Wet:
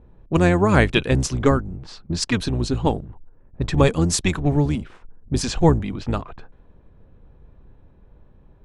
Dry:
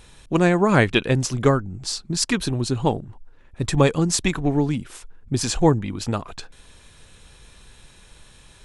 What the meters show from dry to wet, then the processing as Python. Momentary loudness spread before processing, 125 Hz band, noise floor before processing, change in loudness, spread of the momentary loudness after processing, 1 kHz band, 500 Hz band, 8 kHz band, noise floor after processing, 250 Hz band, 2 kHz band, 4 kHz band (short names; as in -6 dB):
11 LU, +1.5 dB, -50 dBFS, +0.5 dB, 12 LU, 0.0 dB, 0.0 dB, -2.0 dB, -52 dBFS, +0.5 dB, 0.0 dB, -1.0 dB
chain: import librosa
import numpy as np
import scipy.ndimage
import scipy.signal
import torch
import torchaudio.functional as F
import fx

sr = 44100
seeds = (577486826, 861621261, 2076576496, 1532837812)

y = fx.octave_divider(x, sr, octaves=1, level_db=-3.0)
y = fx.env_lowpass(y, sr, base_hz=570.0, full_db=-16.0)